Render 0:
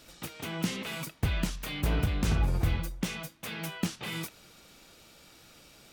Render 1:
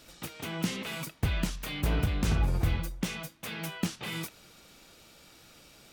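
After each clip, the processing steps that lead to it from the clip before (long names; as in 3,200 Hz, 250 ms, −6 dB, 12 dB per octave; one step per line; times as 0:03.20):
no processing that can be heard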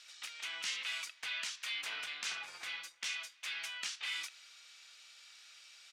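flat-topped band-pass 3,600 Hz, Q 0.63
far-end echo of a speakerphone 290 ms, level −30 dB
level +1 dB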